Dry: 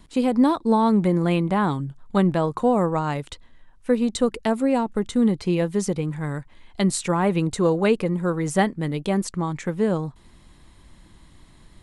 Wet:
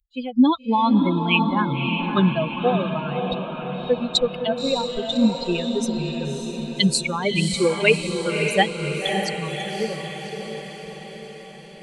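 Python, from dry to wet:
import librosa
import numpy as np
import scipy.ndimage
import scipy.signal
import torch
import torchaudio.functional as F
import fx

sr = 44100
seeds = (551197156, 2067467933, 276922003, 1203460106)

y = fx.bin_expand(x, sr, power=3.0)
y = fx.band_shelf(y, sr, hz=3100.0, db=12.5, octaves=1.2)
y = fx.echo_diffused(y, sr, ms=576, feedback_pct=60, wet_db=-5)
y = y * 10.0 ** (5.5 / 20.0)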